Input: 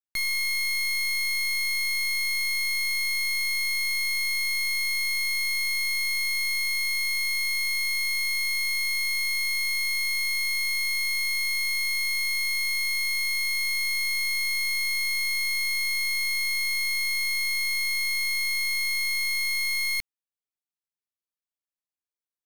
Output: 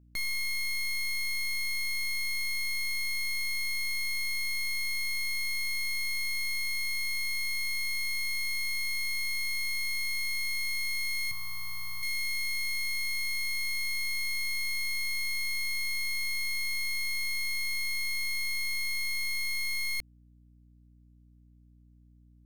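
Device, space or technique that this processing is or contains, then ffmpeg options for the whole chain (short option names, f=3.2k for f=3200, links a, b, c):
valve amplifier with mains hum: -filter_complex "[0:a]aeval=exprs='(tanh(39.8*val(0)+0.45)-tanh(0.45))/39.8':c=same,aeval=exprs='val(0)+0.00141*(sin(2*PI*60*n/s)+sin(2*PI*2*60*n/s)/2+sin(2*PI*3*60*n/s)/3+sin(2*PI*4*60*n/s)/4+sin(2*PI*5*60*n/s)/5)':c=same,asettb=1/sr,asplit=3[a][b][c];[a]atrim=end=11.314[d];[b]atrim=start=11.31:end=12.03,asetpts=PTS-STARTPTS,afade=t=in:d=0.004:c=qsin,afade=t=out:st=0.716:d=0.004:c=qsin,equalizer=f=125:t=o:w=1:g=9,equalizer=f=250:t=o:w=1:g=-6,equalizer=f=500:t=o:w=1:g=-8,equalizer=f=1k:t=o:w=1:g=12,equalizer=f=2k:t=o:w=1:g=-9,equalizer=f=4k:t=o:w=1:g=-3,equalizer=f=8k:t=o:w=1:g=-11[e];[c]atrim=start=12.026[f];[d][e]acrossfade=d=0.004:c1=hsin:c2=qsin[g];[g][f]acrossfade=d=0.004:c1=qsin:c2=hsin"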